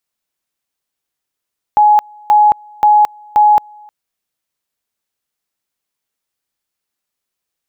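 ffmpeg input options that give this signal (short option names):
-f lavfi -i "aevalsrc='pow(10,(-5-30*gte(mod(t,0.53),0.22))/20)*sin(2*PI*840*t)':d=2.12:s=44100"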